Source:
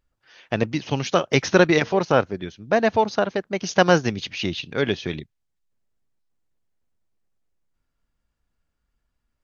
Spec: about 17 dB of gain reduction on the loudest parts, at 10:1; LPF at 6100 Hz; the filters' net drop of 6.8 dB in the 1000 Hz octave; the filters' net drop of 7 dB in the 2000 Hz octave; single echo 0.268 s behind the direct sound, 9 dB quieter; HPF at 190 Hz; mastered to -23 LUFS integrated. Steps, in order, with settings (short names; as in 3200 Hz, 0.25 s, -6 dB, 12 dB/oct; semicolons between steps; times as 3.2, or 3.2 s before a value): HPF 190 Hz; LPF 6100 Hz; bell 1000 Hz -8.5 dB; bell 2000 Hz -6 dB; compressor 10:1, threshold -31 dBFS; echo 0.268 s -9 dB; gain +13.5 dB